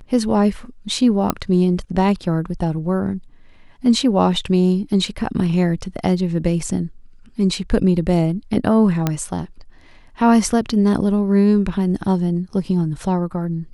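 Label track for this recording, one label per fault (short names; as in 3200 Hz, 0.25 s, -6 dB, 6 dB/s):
1.300000	1.300000	pop -4 dBFS
9.070000	9.070000	pop -5 dBFS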